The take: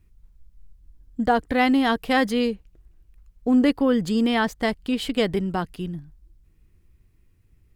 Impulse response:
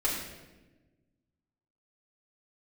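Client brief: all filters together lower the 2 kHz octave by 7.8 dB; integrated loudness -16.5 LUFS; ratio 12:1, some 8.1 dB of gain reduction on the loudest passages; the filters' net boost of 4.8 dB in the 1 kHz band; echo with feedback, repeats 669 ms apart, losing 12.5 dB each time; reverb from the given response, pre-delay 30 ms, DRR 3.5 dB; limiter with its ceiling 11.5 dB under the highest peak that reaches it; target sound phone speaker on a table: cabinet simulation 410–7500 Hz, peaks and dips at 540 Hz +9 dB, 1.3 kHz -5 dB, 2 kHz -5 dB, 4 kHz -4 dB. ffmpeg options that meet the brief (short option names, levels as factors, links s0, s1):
-filter_complex "[0:a]equalizer=f=1000:t=o:g=8,equalizer=f=2000:t=o:g=-8.5,acompressor=threshold=0.0891:ratio=12,alimiter=level_in=1.06:limit=0.0631:level=0:latency=1,volume=0.944,aecho=1:1:669|1338|2007:0.237|0.0569|0.0137,asplit=2[s0][s1];[1:a]atrim=start_sample=2205,adelay=30[s2];[s1][s2]afir=irnorm=-1:irlink=0,volume=0.251[s3];[s0][s3]amix=inputs=2:normalize=0,highpass=f=410:w=0.5412,highpass=f=410:w=1.3066,equalizer=f=540:t=q:w=4:g=9,equalizer=f=1300:t=q:w=4:g=-5,equalizer=f=2000:t=q:w=4:g=-5,equalizer=f=4000:t=q:w=4:g=-4,lowpass=f=7500:w=0.5412,lowpass=f=7500:w=1.3066,volume=7.94"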